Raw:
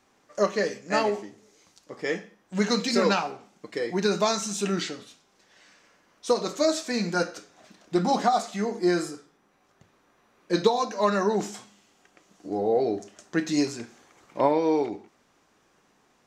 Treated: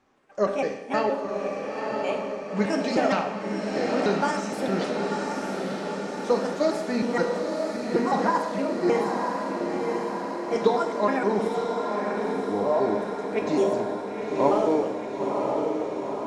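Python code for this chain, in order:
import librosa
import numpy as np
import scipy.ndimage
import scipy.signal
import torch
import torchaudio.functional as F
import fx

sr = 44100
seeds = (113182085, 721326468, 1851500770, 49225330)

y = fx.pitch_trill(x, sr, semitones=5.0, every_ms=156)
y = fx.lowpass(y, sr, hz=1800.0, slope=6)
y = fx.echo_diffused(y, sr, ms=956, feedback_pct=68, wet_db=-3.5)
y = fx.rev_schroeder(y, sr, rt60_s=1.0, comb_ms=29, drr_db=7.0)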